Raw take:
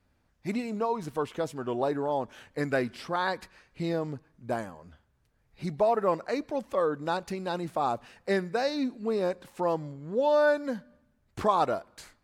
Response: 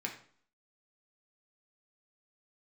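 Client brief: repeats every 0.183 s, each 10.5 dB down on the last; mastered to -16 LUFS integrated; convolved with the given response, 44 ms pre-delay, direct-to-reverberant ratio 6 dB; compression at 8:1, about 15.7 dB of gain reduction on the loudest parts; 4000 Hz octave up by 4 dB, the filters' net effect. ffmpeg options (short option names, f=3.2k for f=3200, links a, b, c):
-filter_complex "[0:a]equalizer=f=4k:t=o:g=4.5,acompressor=threshold=-36dB:ratio=8,aecho=1:1:183|366|549:0.299|0.0896|0.0269,asplit=2[a][b];[1:a]atrim=start_sample=2205,adelay=44[c];[b][c]afir=irnorm=-1:irlink=0,volume=-8dB[d];[a][d]amix=inputs=2:normalize=0,volume=24dB"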